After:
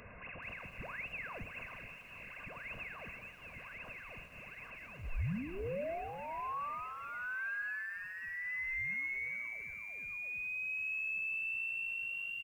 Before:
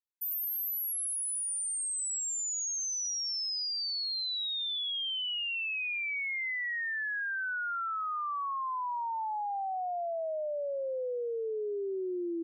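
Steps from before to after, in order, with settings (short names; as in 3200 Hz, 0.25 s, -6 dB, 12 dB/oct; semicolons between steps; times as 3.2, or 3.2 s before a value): delta modulation 32 kbps, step -47.5 dBFS; steep high-pass 260 Hz 36 dB/oct; Schroeder reverb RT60 0.37 s, combs from 26 ms, DRR 12 dB; limiter -38.5 dBFS, peak gain reduction 11 dB; comb 2 ms, depth 53%; on a send: frequency-shifting echo 0.317 s, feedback 51%, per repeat -110 Hz, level -21 dB; on the sum: inverted band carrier 3100 Hz; low shelf 440 Hz +8.5 dB; lo-fi delay 0.426 s, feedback 35%, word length 10-bit, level -10 dB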